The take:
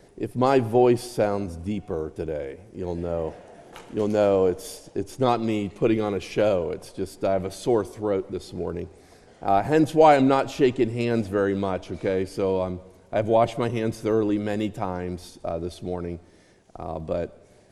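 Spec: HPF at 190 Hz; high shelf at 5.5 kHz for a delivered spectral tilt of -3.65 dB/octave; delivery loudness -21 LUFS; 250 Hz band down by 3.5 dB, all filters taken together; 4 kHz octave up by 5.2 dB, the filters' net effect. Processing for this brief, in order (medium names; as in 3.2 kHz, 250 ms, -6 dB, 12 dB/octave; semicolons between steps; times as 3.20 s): high-pass 190 Hz; peaking EQ 250 Hz -3.5 dB; peaking EQ 4 kHz +5.5 dB; treble shelf 5.5 kHz +3 dB; trim +4.5 dB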